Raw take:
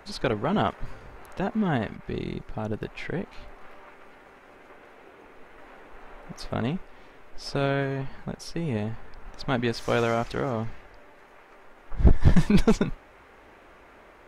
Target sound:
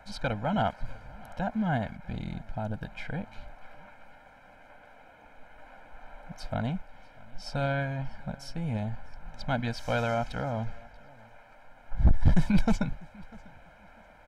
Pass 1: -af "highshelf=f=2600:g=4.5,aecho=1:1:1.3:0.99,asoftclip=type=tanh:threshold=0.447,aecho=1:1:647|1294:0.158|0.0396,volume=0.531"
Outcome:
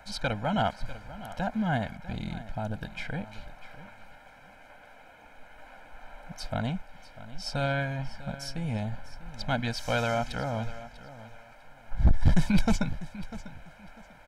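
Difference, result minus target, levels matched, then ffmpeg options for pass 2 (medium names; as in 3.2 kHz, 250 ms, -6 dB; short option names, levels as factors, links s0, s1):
echo-to-direct +8.5 dB; 4 kHz band +5.0 dB
-af "highshelf=f=2600:g=-3,aecho=1:1:1.3:0.99,asoftclip=type=tanh:threshold=0.447,aecho=1:1:647|1294:0.0596|0.0149,volume=0.531"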